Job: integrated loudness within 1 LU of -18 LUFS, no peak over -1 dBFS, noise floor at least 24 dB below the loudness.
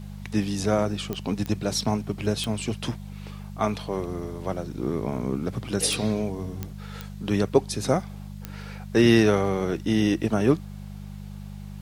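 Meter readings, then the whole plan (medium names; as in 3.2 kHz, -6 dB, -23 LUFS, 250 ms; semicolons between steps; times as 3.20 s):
clicks found 7; hum 50 Hz; highest harmonic 200 Hz; hum level -36 dBFS; loudness -25.5 LUFS; peak level -6.5 dBFS; loudness target -18.0 LUFS
-> de-click; de-hum 50 Hz, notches 4; trim +7.5 dB; peak limiter -1 dBFS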